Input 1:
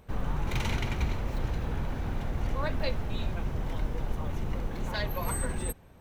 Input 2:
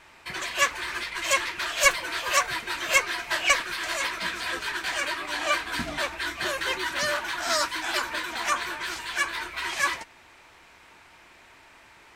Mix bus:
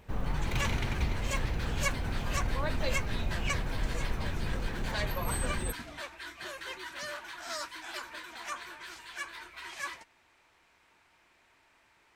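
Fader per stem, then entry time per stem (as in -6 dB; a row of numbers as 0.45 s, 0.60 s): -1.5 dB, -13.0 dB; 0.00 s, 0.00 s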